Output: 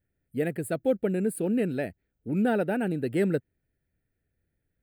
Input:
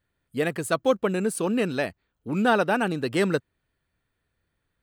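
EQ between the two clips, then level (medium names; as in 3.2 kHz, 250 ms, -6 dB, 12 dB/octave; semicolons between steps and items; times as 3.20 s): peaking EQ 3.3 kHz -13.5 dB 1.2 oct; static phaser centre 2.6 kHz, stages 4; 0.0 dB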